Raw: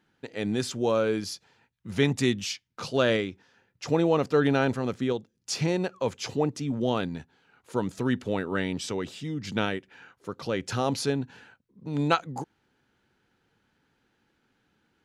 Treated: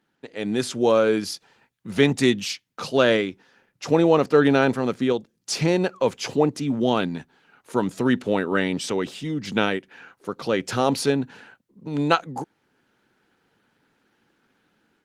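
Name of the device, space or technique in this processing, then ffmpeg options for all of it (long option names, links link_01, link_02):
video call: -filter_complex "[0:a]asettb=1/sr,asplit=3[link_01][link_02][link_03];[link_01]atrim=end=6.604[link_04];[link_02]atrim=start=6.6:end=7.9,asetpts=PTS-STARTPTS,afade=type=in:duration=0.004:curve=qsin,afade=type=out:start_time=1.296:duration=0.004:curve=qsin,equalizer=frequency=500:width=3.9:gain=-3.5[link_05];[link_03]atrim=start=7.896[link_06];[link_04][link_05]acrossfade=duration=0.004:curve1=hsin:curve2=qsin[link_07];[link_07][link_06]acrossfade=duration=0.004:curve1=qsin:curve2=hsin,highpass=160,dynaudnorm=framelen=340:gausssize=3:maxgain=7dB" -ar 48000 -c:a libopus -b:a 24k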